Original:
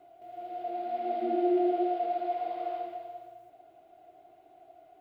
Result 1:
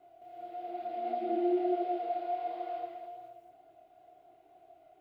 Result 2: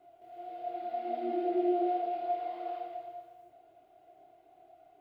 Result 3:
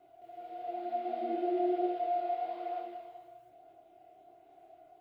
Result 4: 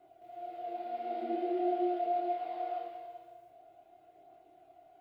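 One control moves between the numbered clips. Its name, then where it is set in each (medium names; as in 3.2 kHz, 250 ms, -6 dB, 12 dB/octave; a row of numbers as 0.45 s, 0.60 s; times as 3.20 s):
chorus, rate: 2.3 Hz, 1.3 Hz, 0.54 Hz, 0.23 Hz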